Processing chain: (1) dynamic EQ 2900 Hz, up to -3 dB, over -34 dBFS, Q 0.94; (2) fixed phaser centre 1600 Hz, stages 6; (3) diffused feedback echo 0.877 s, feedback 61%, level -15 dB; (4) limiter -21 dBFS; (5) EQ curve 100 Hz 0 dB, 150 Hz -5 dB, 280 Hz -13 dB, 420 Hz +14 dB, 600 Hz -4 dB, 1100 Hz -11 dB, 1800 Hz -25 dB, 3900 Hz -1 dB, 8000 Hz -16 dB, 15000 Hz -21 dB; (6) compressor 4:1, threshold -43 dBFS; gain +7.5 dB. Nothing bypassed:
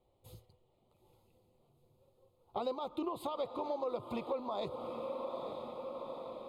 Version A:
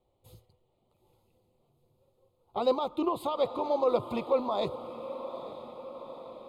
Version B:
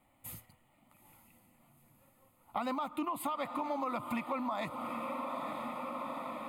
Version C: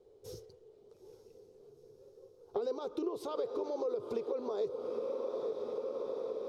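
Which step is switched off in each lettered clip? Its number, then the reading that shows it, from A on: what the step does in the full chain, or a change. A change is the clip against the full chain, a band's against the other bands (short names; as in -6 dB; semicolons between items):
6, crest factor change +2.5 dB; 5, loudness change +2.0 LU; 2, 500 Hz band +8.0 dB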